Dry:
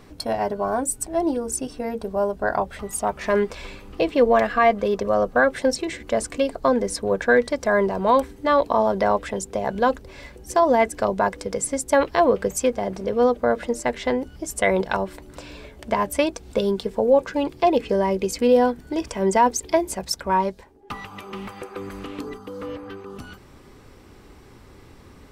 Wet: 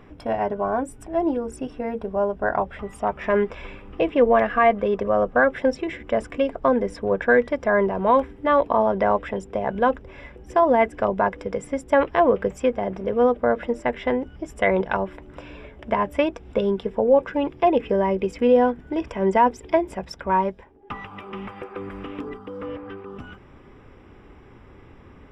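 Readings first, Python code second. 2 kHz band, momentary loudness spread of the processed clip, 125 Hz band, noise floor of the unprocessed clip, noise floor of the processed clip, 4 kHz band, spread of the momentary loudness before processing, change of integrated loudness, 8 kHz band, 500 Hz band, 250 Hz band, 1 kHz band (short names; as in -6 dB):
0.0 dB, 16 LU, 0.0 dB, -48 dBFS, -48 dBFS, -7.0 dB, 16 LU, 0.0 dB, under -15 dB, 0.0 dB, 0.0 dB, 0.0 dB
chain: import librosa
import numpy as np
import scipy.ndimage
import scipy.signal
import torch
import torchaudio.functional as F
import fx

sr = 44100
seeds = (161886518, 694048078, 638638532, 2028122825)

y = scipy.signal.savgol_filter(x, 25, 4, mode='constant')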